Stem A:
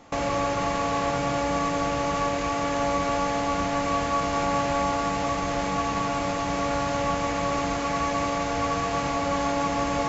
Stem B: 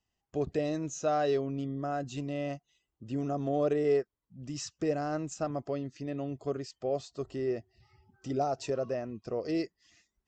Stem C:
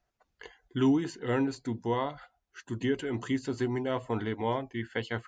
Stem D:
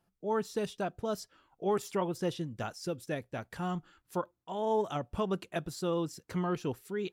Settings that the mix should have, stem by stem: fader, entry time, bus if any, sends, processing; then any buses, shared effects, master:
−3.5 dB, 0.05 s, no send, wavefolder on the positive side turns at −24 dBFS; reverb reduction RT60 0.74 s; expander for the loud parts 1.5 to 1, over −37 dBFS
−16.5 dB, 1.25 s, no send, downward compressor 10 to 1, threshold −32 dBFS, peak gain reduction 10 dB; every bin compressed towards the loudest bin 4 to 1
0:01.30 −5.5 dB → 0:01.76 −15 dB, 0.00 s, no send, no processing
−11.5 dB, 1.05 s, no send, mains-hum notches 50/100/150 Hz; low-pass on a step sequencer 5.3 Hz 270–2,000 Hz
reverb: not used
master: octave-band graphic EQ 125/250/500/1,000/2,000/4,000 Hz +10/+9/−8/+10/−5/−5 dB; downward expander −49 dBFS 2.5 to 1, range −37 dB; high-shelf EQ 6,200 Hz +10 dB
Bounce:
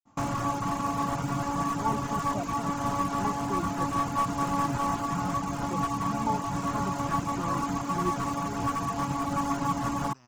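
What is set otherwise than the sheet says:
stem C: muted
stem D: entry 1.05 s → 1.55 s

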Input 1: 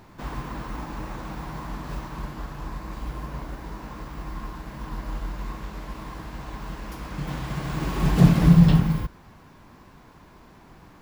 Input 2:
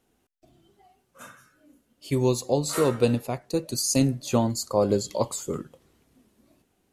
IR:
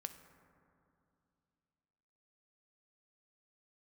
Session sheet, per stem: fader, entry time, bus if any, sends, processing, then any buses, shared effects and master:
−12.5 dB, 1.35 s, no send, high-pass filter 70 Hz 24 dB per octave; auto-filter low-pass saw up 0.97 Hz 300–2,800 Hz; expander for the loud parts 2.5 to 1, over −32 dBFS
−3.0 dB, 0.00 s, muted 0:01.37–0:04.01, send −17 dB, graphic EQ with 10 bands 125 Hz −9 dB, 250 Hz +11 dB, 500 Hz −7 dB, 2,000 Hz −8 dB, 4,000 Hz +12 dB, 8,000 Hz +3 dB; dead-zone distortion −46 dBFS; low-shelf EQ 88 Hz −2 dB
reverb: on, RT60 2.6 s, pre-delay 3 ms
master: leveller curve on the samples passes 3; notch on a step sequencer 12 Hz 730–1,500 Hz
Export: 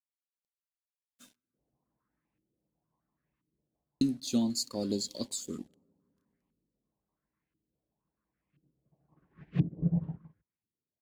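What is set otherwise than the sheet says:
stem 2 −3.0 dB → −9.5 dB
master: missing leveller curve on the samples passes 3

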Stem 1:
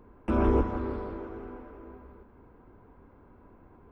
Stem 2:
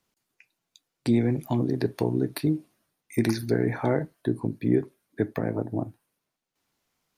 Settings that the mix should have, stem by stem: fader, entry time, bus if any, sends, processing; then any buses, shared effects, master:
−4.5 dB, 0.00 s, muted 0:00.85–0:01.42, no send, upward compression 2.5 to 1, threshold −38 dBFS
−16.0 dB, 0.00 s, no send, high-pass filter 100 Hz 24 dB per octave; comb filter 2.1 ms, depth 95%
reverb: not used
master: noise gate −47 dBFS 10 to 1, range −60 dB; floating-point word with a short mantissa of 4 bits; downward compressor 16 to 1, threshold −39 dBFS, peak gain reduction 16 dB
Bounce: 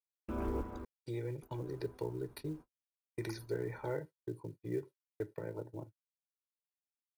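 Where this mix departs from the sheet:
stem 1 −4.5 dB → −13.0 dB
master: missing downward compressor 16 to 1, threshold −39 dBFS, peak gain reduction 16 dB

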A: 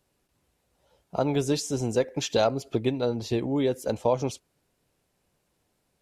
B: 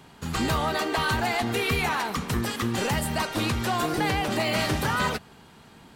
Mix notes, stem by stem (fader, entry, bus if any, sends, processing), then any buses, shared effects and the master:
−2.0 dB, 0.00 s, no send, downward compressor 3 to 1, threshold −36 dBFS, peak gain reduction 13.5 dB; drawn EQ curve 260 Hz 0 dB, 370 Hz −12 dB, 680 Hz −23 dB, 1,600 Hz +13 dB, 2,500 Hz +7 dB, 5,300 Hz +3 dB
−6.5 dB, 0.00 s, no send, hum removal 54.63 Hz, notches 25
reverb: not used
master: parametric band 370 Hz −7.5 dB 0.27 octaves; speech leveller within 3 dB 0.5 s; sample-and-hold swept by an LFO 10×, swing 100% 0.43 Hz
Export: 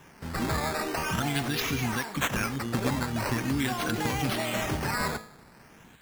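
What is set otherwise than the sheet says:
stem A −2.0 dB → +10.0 dB
master: missing parametric band 370 Hz −7.5 dB 0.27 octaves

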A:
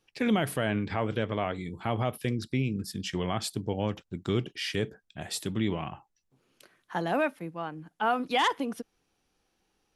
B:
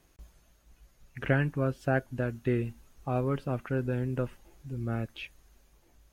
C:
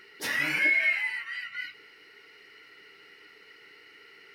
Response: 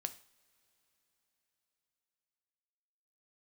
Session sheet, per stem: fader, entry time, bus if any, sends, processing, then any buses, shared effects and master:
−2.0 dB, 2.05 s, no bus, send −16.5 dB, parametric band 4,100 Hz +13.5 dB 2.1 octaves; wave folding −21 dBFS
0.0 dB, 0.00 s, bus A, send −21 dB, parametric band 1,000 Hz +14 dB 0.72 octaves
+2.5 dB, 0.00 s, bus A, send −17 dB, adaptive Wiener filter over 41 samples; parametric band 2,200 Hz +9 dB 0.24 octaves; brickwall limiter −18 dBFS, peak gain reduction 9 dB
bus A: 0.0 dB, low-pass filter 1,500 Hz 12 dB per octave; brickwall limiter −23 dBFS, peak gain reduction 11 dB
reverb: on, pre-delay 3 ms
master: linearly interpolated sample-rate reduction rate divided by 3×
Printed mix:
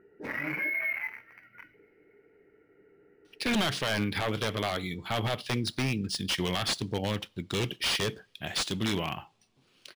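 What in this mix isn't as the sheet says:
stem A: entry 2.05 s → 3.25 s
stem B: muted
reverb return +6.5 dB

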